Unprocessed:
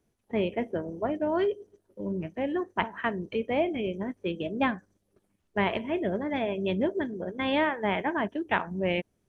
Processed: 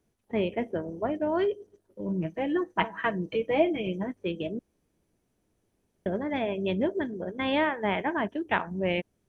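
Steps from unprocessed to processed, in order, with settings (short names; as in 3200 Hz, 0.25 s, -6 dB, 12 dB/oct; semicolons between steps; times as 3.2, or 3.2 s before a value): 2.08–4.07 comb 6.2 ms, depth 72%; 4.59–6.06 room tone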